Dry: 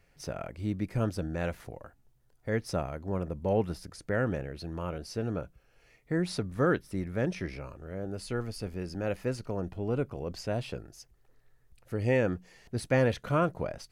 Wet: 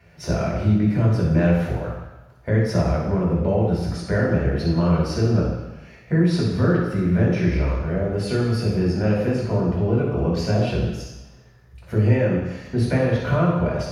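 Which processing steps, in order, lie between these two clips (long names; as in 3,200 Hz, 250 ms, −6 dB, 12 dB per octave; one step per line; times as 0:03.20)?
downward compressor 6 to 1, threshold −34 dBFS, peak gain reduction 13 dB
convolution reverb RT60 1.1 s, pre-delay 3 ms, DRR −4.5 dB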